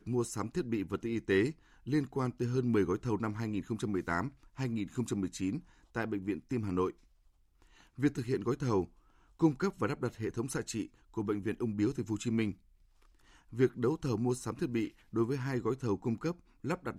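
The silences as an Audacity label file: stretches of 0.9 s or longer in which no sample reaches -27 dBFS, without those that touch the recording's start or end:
6.860000	8.030000	silence
12.490000	13.590000	silence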